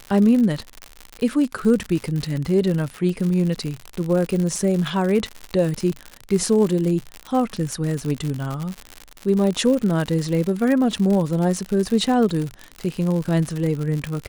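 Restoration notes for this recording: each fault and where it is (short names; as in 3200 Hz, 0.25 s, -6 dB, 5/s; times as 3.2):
crackle 95/s -24 dBFS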